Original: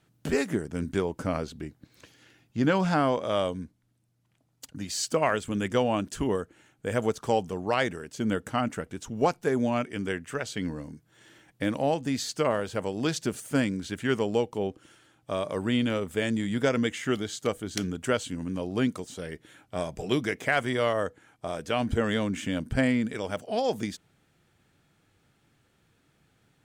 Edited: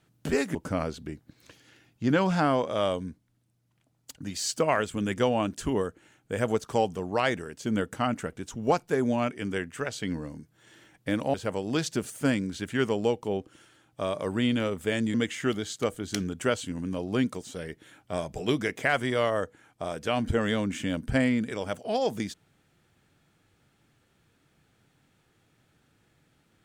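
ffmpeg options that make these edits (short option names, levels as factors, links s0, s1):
-filter_complex "[0:a]asplit=4[s0][s1][s2][s3];[s0]atrim=end=0.552[s4];[s1]atrim=start=1.088:end=11.882[s5];[s2]atrim=start=12.638:end=16.442[s6];[s3]atrim=start=16.768[s7];[s4][s5]acrossfade=d=0.004:c1=hsin:c2=hsin[s8];[s8][s6]acrossfade=d=0.004:c1=hsin:c2=hsin[s9];[s9][s7]acrossfade=d=0.004:c1=hsin:c2=hsin"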